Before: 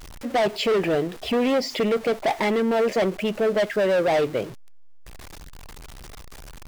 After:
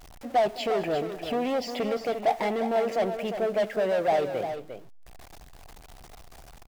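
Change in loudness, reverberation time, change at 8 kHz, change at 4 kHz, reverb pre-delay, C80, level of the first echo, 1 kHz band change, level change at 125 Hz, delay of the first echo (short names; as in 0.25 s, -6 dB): -4.5 dB, none, n/a, -7.5 dB, none, none, -18.5 dB, -0.5 dB, -7.5 dB, 0.213 s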